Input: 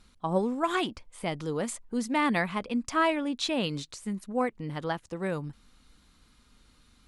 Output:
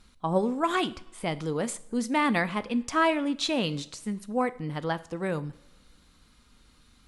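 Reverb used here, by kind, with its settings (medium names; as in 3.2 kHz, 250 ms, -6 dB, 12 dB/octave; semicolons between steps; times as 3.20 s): two-slope reverb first 0.57 s, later 1.9 s, from -18 dB, DRR 14 dB; trim +1.5 dB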